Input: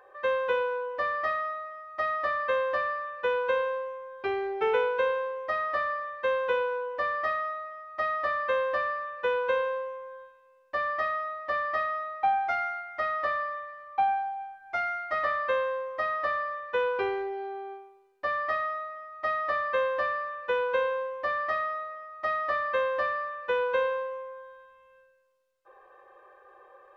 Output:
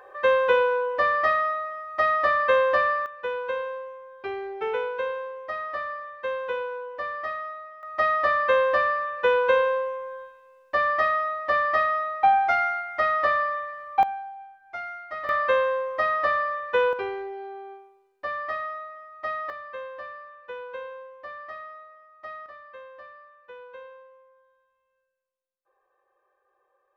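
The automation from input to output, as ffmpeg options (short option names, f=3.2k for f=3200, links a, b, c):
-af "asetnsamples=n=441:p=0,asendcmd='3.06 volume volume -2.5dB;7.83 volume volume 6.5dB;14.03 volume volume -5dB;15.29 volume volume 5.5dB;16.93 volume volume -1.5dB;19.5 volume volume -10dB;22.46 volume volume -17dB',volume=7dB"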